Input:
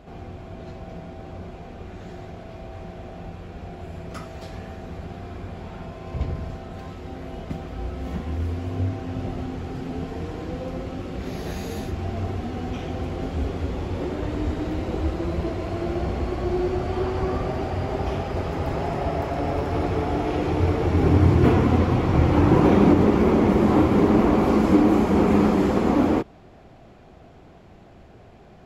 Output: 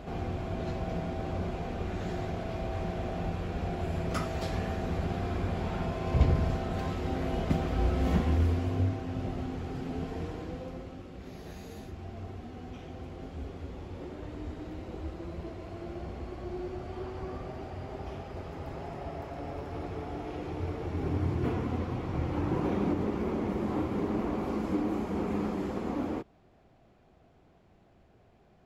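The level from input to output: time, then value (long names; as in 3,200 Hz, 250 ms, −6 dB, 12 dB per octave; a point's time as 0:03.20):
0:08.16 +3.5 dB
0:09.04 −5 dB
0:10.22 −5 dB
0:11.10 −13.5 dB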